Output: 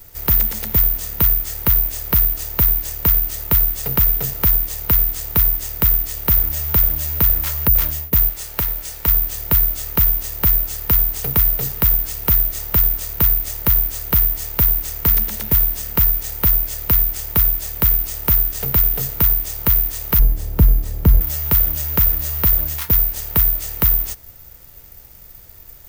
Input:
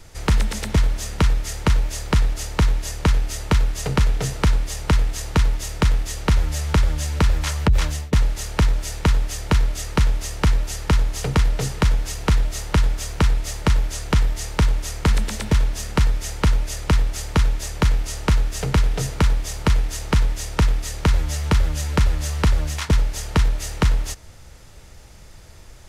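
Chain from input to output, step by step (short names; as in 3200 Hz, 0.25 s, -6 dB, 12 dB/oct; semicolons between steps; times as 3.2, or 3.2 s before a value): 8.29–9.08 low shelf 340 Hz -7 dB; careless resampling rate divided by 3×, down none, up zero stuff; 20.19–21.21 tilt shelf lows +9.5 dB, about 680 Hz; gain -3.5 dB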